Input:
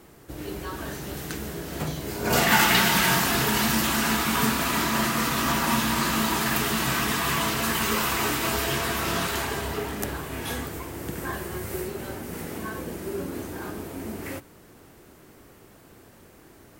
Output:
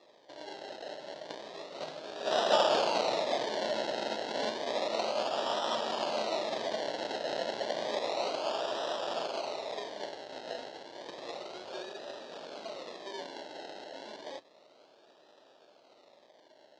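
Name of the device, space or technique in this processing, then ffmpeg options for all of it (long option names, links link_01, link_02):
circuit-bent sampling toy: -af "acrusher=samples=29:mix=1:aa=0.000001:lfo=1:lforange=17.4:lforate=0.31,highpass=580,equalizer=frequency=600:width_type=q:width=4:gain=9,equalizer=frequency=1100:width_type=q:width=4:gain=-6,equalizer=frequency=1500:width_type=q:width=4:gain=-4,equalizer=frequency=2300:width_type=q:width=4:gain=-7,equalizer=frequency=4000:width_type=q:width=4:gain=6,lowpass=frequency=5600:width=0.5412,lowpass=frequency=5600:width=1.3066,volume=-5dB"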